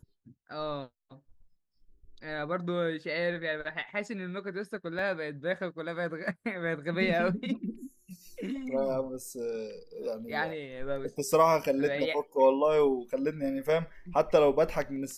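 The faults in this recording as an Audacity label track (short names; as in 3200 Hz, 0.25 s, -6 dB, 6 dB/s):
4.990000	4.990000	gap 2.2 ms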